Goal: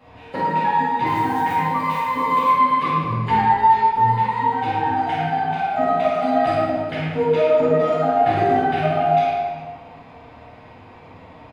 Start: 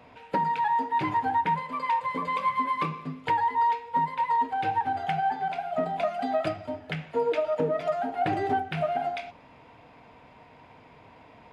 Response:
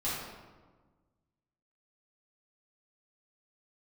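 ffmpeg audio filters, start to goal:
-filter_complex "[0:a]aecho=1:1:50|112.5|190.6|288.3|410.4:0.631|0.398|0.251|0.158|0.1,asettb=1/sr,asplit=3[link_01][link_02][link_03];[link_01]atrim=end=1.064[link_04];[link_02]atrim=start=1.06:end=2.49,asetpts=PTS-STARTPTS,afade=type=in:duration=0.004:curve=qsin,afade=type=out:start_time=1.426:duration=0.004:curve=qsin,acrusher=bits=7:mode=log:mix=0:aa=0.000001[link_05];[link_03]atrim=start=2.486[link_06];[link_04][link_05]acrossfade=duration=0.004:curve1=hsin:curve2=qsin[link_07];[link_07][link_06]acrossfade=duration=0.004:curve1=qsin:curve2=hsin,asettb=1/sr,asplit=3[link_08][link_09][link_10];[link_08]atrim=end=3.024[link_11];[link_09]atrim=start=3.02:end=4.25,asetpts=PTS-STARTPTS,afade=type=in:duration=0.004:curve=qsin,afade=type=out:start_time=1.226:duration=0.004:curve=qsin,afreqshift=-43[link_12];[link_10]atrim=start=4.246[link_13];[link_11][link_12]acrossfade=duration=0.004:curve1=hsin:curve2=qsin[link_14];[link_14][link_13]acrossfade=duration=0.004:curve1=qsin:curve2=hsin[link_15];[1:a]atrim=start_sample=2205[link_16];[link_15][link_16]afir=irnorm=-1:irlink=0"

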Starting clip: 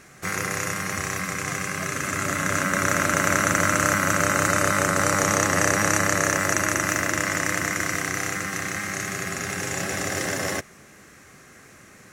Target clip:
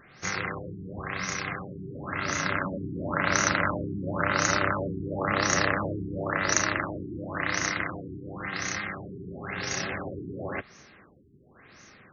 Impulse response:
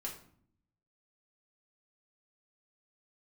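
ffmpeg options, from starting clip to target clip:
-filter_complex "[0:a]asplit=2[link_01][link_02];[link_02]asetrate=29433,aresample=44100,atempo=1.49831,volume=-11dB[link_03];[link_01][link_03]amix=inputs=2:normalize=0,crystalizer=i=2.5:c=0,afftfilt=real='re*lt(b*sr/1024,420*pow(6800/420,0.5+0.5*sin(2*PI*0.95*pts/sr)))':imag='im*lt(b*sr/1024,420*pow(6800/420,0.5+0.5*sin(2*PI*0.95*pts/sr)))':win_size=1024:overlap=0.75,volume=-5dB"

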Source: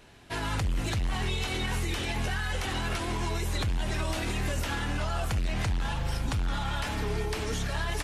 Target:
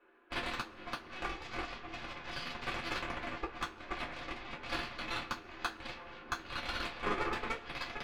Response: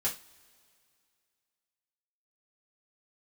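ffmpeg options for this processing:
-filter_complex "[0:a]highpass=frequency=340:width=0.5412,highpass=frequency=340:width=1.3066,equalizer=frequency=390:width_type=q:width=4:gain=9,equalizer=frequency=690:width_type=q:width=4:gain=-7,equalizer=frequency=1400:width_type=q:width=4:gain=7,equalizer=frequency=2100:width_type=q:width=4:gain=-7,lowpass=frequency=2300:width=0.5412,lowpass=frequency=2300:width=1.3066,aeval=exprs='0.106*(cos(1*acos(clip(val(0)/0.106,-1,1)))-cos(1*PI/2))+0.0299*(cos(3*acos(clip(val(0)/0.106,-1,1)))-cos(3*PI/2))+0.00596*(cos(6*acos(clip(val(0)/0.106,-1,1)))-cos(6*PI/2))+0.00668*(cos(7*acos(clip(val(0)/0.106,-1,1)))-cos(7*PI/2))':channel_layout=same,asplit=2[link_01][link_02];[link_02]acrusher=bits=4:mix=0:aa=0.5,volume=-4.5dB[link_03];[link_01][link_03]amix=inputs=2:normalize=0,flanger=delay=5.1:depth=4.9:regen=-85:speed=1.7:shape=triangular[link_04];[1:a]atrim=start_sample=2205,asetrate=66150,aresample=44100[link_05];[link_04][link_05]afir=irnorm=-1:irlink=0,volume=6dB"

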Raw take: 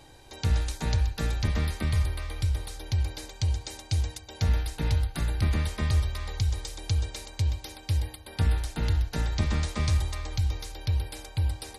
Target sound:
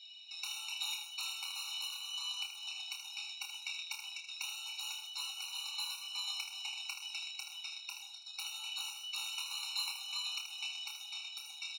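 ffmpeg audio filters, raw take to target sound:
ffmpeg -i in.wav -filter_complex "[0:a]afftfilt=real='real(if(lt(b,272),68*(eq(floor(b/68),0)*1+eq(floor(b/68),1)*3+eq(floor(b/68),2)*0+eq(floor(b/68),3)*2)+mod(b,68),b),0)':imag='imag(if(lt(b,272),68*(eq(floor(b/68),0)*1+eq(floor(b/68),1)*3+eq(floor(b/68),2)*0+eq(floor(b/68),3)*2)+mod(b,68),b),0)':win_size=2048:overlap=0.75,lowpass=frequency=4700:width=0.5412,lowpass=frequency=4700:width=1.3066,afftfilt=real='re*(1-between(b*sr/4096,300,2000))':imag='im*(1-between(b*sr/4096,300,2000))':win_size=4096:overlap=0.75,highpass=47,tiltshelf=frequency=640:gain=5,acontrast=60,flanger=delay=9.2:depth=2.3:regen=-56:speed=0.57:shape=triangular,acrossover=split=390|2800[link_01][link_02][link_03];[link_01]acompressor=threshold=-49dB:ratio=4[link_04];[link_02]acompressor=threshold=-35dB:ratio=4[link_05];[link_03]acompressor=threshold=-34dB:ratio=4[link_06];[link_04][link_05][link_06]amix=inputs=3:normalize=0,aeval=exprs='(tanh(39.8*val(0)+0.5)-tanh(0.5))/39.8':channel_layout=same,asplit=2[link_07][link_08];[link_08]adelay=30,volume=-6.5dB[link_09];[link_07][link_09]amix=inputs=2:normalize=0,asplit=2[link_10][link_11];[link_11]aecho=0:1:24|78:0.398|0.422[link_12];[link_10][link_12]amix=inputs=2:normalize=0,afftfilt=real='re*eq(mod(floor(b*sr/1024/740),2),1)':imag='im*eq(mod(floor(b*sr/1024/740),2),1)':win_size=1024:overlap=0.75,volume=9.5dB" out.wav

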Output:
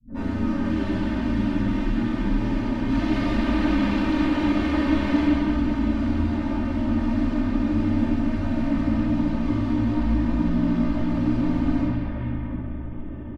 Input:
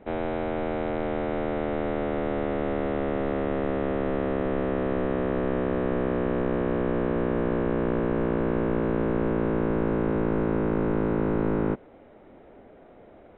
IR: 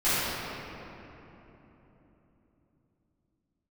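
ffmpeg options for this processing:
-filter_complex "[0:a]alimiter=limit=-17.5dB:level=0:latency=1:release=386,highpass=96,bass=frequency=250:gain=7,treble=frequency=4000:gain=12,acrossover=split=250|1800[link_01][link_02][link_03];[link_02]adelay=80[link_04];[link_03]adelay=560[link_05];[link_01][link_04][link_05]amix=inputs=3:normalize=0,volume=25dB,asoftclip=hard,volume=-25dB,asettb=1/sr,asplit=3[link_06][link_07][link_08];[link_06]atrim=end=2.874[link_09];[link_07]atrim=start=2.87:end=5.24,asetpts=PTS-STARTPTS,afade=type=in:duration=0.004:curve=qsin,afade=type=out:start_time=2.366:duration=0.004:curve=qsin,acontrast=32[link_10];[link_08]atrim=start=5.236[link_11];[link_09][link_10]acrossfade=duration=0.004:curve1=hsin:curve2=qsin[link_12];[link_12][link_11]acrossfade=duration=0.004:curve1=qsin:curve2=hsin,aeval=exprs='0.0422*(abs(mod(val(0)/0.0422+3,4)-2)-1)':channel_layout=same,aemphasis=mode=reproduction:type=75kf[link_13];[1:a]atrim=start_sample=2205[link_14];[link_13][link_14]afir=irnorm=-1:irlink=0,acrossover=split=160|3000[link_15][link_16][link_17];[link_16]acompressor=threshold=-33dB:ratio=2[link_18];[link_15][link_18][link_17]amix=inputs=3:normalize=0,afreqshift=-320,aecho=1:1:3.3:0.93,volume=-3.5dB"

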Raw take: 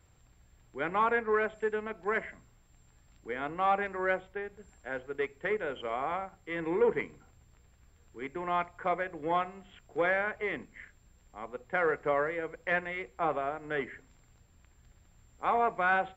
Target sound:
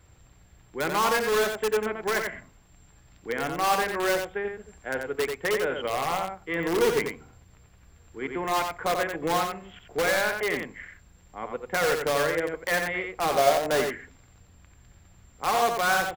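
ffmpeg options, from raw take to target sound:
ffmpeg -i in.wav -filter_complex "[0:a]asettb=1/sr,asplit=3[link_01][link_02][link_03];[link_01]atrim=end=13.384[link_04];[link_02]atrim=start=13.38:end=13.82,asetpts=PTS-STARTPTS,afade=type=in:duration=0.004:curve=qsin,afade=type=out:start_time=0.436:duration=0.004:curve=qsin,equalizer=frequency=620:width_type=o:width=1:gain=13[link_05];[link_03]atrim=start=13.816[link_06];[link_04][link_05]acrossfade=duration=0.004:curve1=hsin:curve2=qsin[link_07];[link_07][link_06]acrossfade=duration=0.004:curve1=qsin:curve2=hsin,asplit=2[link_08][link_09];[link_09]aeval=exprs='(mod(17.8*val(0)+1,2)-1)/17.8':channel_layout=same,volume=-3.5dB[link_10];[link_08][link_10]amix=inputs=2:normalize=0,aecho=1:1:89:0.531,volume=2dB" out.wav

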